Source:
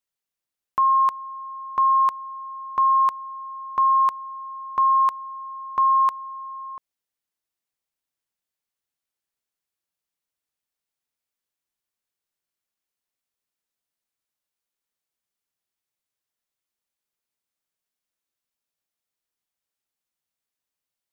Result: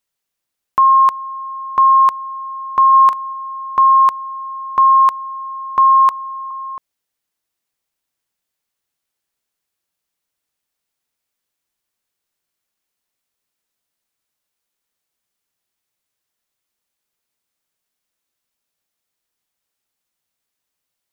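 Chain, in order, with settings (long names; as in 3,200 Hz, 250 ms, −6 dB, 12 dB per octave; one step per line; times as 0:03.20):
0:02.89–0:03.33: double-tracking delay 41 ms −12 dB
0:06.11–0:06.51: Butterworth high-pass 420 Hz
level +8 dB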